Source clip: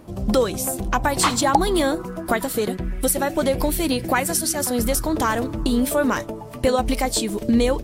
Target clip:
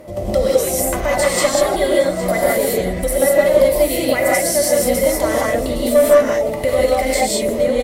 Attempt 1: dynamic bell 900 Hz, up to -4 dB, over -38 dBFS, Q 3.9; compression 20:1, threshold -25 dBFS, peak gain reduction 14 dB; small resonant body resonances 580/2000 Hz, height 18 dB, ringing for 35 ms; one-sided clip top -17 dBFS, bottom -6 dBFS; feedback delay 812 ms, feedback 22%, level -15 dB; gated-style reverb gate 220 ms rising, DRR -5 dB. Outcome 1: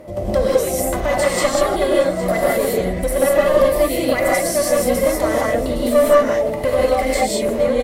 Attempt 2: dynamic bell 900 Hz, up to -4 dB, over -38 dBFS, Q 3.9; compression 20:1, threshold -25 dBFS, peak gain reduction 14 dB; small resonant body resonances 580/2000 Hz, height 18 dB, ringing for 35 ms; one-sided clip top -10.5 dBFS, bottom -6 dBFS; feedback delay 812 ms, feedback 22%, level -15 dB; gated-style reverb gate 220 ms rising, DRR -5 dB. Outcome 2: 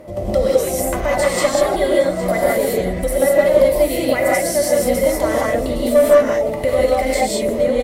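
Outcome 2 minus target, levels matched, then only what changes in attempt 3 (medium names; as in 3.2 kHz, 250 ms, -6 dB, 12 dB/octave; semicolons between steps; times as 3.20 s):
8 kHz band -4.0 dB
add after compression: treble shelf 3 kHz +5 dB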